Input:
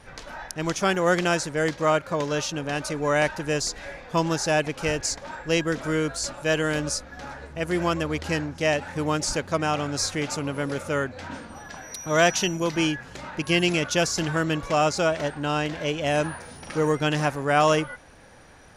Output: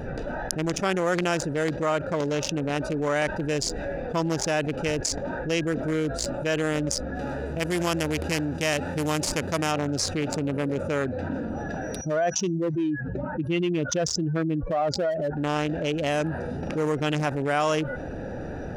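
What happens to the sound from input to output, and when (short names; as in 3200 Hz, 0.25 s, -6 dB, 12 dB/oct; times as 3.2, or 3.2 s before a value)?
7.15–9.71 spectral whitening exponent 0.6
12.01–15.37 spectral contrast raised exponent 2.1
whole clip: Wiener smoothing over 41 samples; low shelf 120 Hz -7.5 dB; fast leveller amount 70%; gain -5 dB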